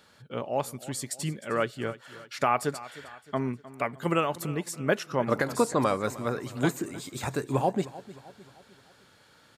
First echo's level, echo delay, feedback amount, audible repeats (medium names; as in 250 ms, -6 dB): -17.5 dB, 308 ms, 48%, 3